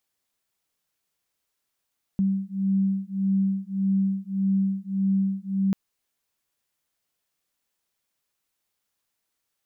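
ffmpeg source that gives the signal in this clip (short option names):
-f lavfi -i "aevalsrc='0.0596*(sin(2*PI*193*t)+sin(2*PI*194.7*t))':d=3.54:s=44100"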